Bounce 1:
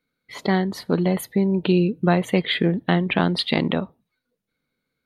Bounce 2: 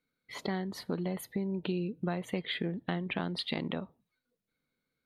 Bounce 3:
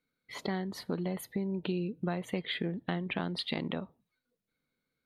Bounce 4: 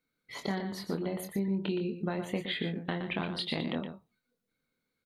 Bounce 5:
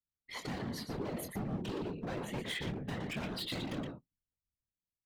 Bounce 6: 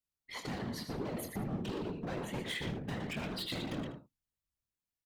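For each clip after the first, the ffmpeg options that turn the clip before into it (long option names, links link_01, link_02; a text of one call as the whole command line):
ffmpeg -i in.wav -af "acompressor=threshold=-28dB:ratio=2.5,volume=-6dB" out.wav
ffmpeg -i in.wav -af anull out.wav
ffmpeg -i in.wav -filter_complex "[0:a]asplit=2[link_01][link_02];[link_02]adelay=25,volume=-7dB[link_03];[link_01][link_03]amix=inputs=2:normalize=0,aecho=1:1:119:0.376" out.wav
ffmpeg -i in.wav -af "volume=35.5dB,asoftclip=hard,volume=-35.5dB,anlmdn=0.0000631,afftfilt=real='hypot(re,im)*cos(2*PI*random(0))':imag='hypot(re,im)*sin(2*PI*random(1))':win_size=512:overlap=0.75,volume=5.5dB" out.wav
ffmpeg -i in.wav -af "aecho=1:1:78:0.251" out.wav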